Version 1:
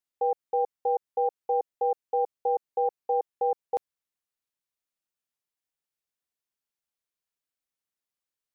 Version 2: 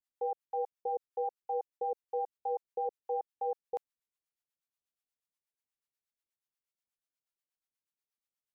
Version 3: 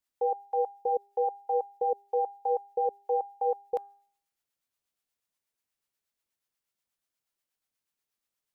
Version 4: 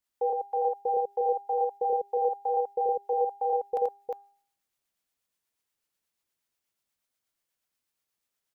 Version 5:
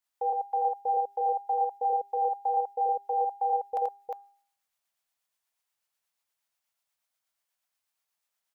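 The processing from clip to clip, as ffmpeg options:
ffmpeg -i in.wav -filter_complex "[0:a]acrossover=split=660[link_01][link_02];[link_01]aeval=exprs='val(0)*(1-1/2+1/2*cos(2*PI*8.3*n/s))':channel_layout=same[link_03];[link_02]aeval=exprs='val(0)*(1-1/2-1/2*cos(2*PI*8.3*n/s))':channel_layout=same[link_04];[link_03][link_04]amix=inputs=2:normalize=0,volume=-2.5dB" out.wav
ffmpeg -i in.wav -af "bandreject=frequency=401.7:width_type=h:width=4,bandreject=frequency=803.4:width_type=h:width=4,bandreject=frequency=1205.1:width_type=h:width=4,bandreject=frequency=1606.8:width_type=h:width=4,volume=6.5dB" out.wav
ffmpeg -i in.wav -af "aecho=1:1:85|356:0.708|0.631" out.wav
ffmpeg -i in.wav -af "lowshelf=frequency=530:width_type=q:width=1.5:gain=-8" out.wav

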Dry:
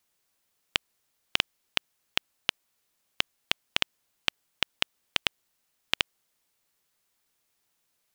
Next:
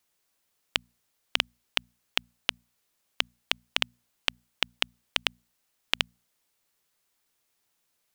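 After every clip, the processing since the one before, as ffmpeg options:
ffmpeg -i in.wav -af "bandreject=frequency=60:width_type=h:width=6,bandreject=frequency=120:width_type=h:width=6,bandreject=frequency=180:width_type=h:width=6,bandreject=frequency=240:width_type=h:width=6" out.wav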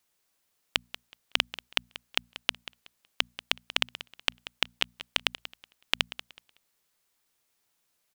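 ffmpeg -i in.wav -af "aecho=1:1:186|372|558:0.178|0.0427|0.0102" out.wav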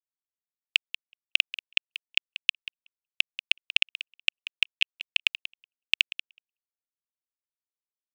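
ffmpeg -i in.wav -af "highpass=frequency=2600:width_type=q:width=6.4,anlmdn=25.1,volume=-6dB" out.wav

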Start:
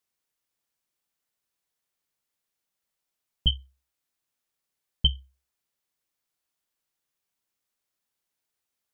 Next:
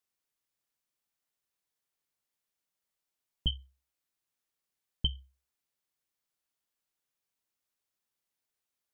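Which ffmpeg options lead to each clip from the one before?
ffmpeg -i in.wav -af "acompressor=threshold=-21dB:ratio=6,volume=-4dB" out.wav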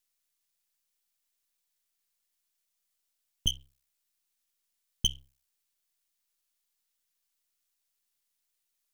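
ffmpeg -i in.wav -af "aeval=exprs='max(val(0),0)':channel_layout=same,highshelf=frequency=2000:gain=12" out.wav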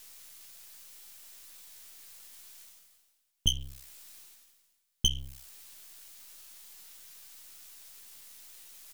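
ffmpeg -i in.wav -filter_complex "[0:a]asplit=2[link_01][link_02];[link_02]adelay=15,volume=-7dB[link_03];[link_01][link_03]amix=inputs=2:normalize=0,areverse,acompressor=mode=upward:threshold=-29dB:ratio=2.5,areverse,volume=1dB" out.wav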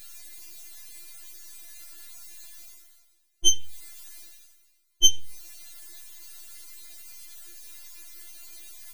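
ffmpeg -i in.wav -af "afftfilt=real='re*4*eq(mod(b,16),0)':imag='im*4*eq(mod(b,16),0)':win_size=2048:overlap=0.75,volume=7.5dB" out.wav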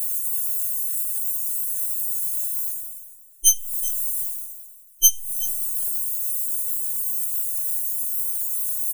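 ffmpeg -i in.wav -filter_complex "[0:a]asplit=2[link_01][link_02];[link_02]adelay=383,lowpass=frequency=2600:poles=1,volume=-11.5dB,asplit=2[link_03][link_04];[link_04]adelay=383,lowpass=frequency=2600:poles=1,volume=0.17[link_05];[link_01][link_03][link_05]amix=inputs=3:normalize=0,aexciter=amount=15.7:drive=8.5:freq=7100,volume=-8dB" out.wav

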